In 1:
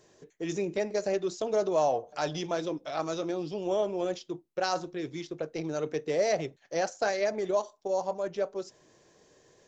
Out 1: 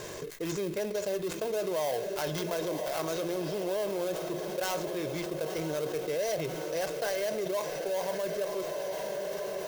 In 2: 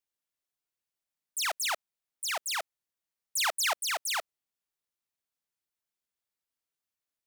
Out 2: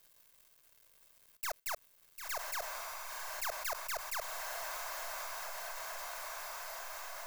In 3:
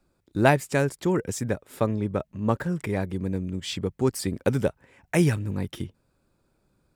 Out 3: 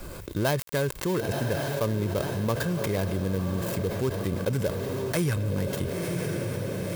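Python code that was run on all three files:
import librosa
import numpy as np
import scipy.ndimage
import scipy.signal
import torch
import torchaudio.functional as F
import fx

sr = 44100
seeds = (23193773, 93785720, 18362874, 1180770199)

y = fx.dead_time(x, sr, dead_ms=0.15)
y = fx.high_shelf(y, sr, hz=11000.0, db=10.5)
y = y + 0.37 * np.pad(y, (int(1.9 * sr / 1000.0), 0))[:len(y)]
y = fx.echo_diffused(y, sr, ms=1014, feedback_pct=57, wet_db=-13.0)
y = fx.env_flatten(y, sr, amount_pct=70)
y = y * 10.0 ** (-8.5 / 20.0)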